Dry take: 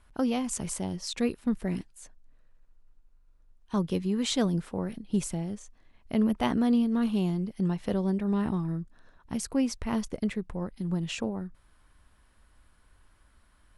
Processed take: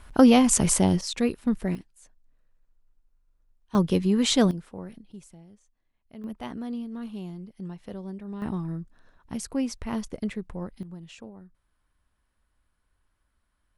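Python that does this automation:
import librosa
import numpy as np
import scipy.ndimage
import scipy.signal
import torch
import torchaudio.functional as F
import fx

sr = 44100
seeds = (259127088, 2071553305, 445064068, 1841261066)

y = fx.gain(x, sr, db=fx.steps((0.0, 12.0), (1.01, 3.0), (1.75, -6.0), (3.75, 6.0), (4.51, -6.5), (5.12, -17.0), (6.24, -9.5), (8.42, -1.0), (10.83, -12.0)))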